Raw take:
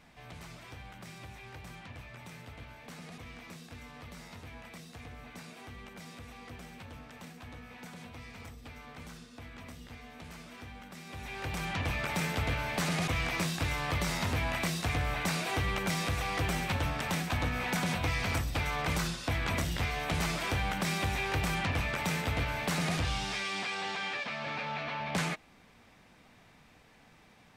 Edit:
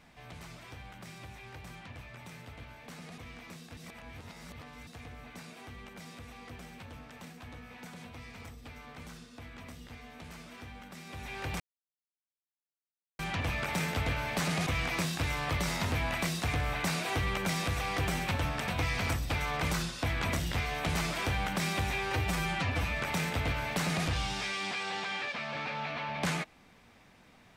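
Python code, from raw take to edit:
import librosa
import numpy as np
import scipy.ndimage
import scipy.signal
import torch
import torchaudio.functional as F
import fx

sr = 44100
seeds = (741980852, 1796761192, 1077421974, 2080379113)

y = fx.edit(x, sr, fx.reverse_span(start_s=3.77, length_s=1.1),
    fx.insert_silence(at_s=11.6, length_s=1.59),
    fx.cut(start_s=17.09, length_s=0.84),
    fx.stretch_span(start_s=21.23, length_s=0.67, factor=1.5), tone=tone)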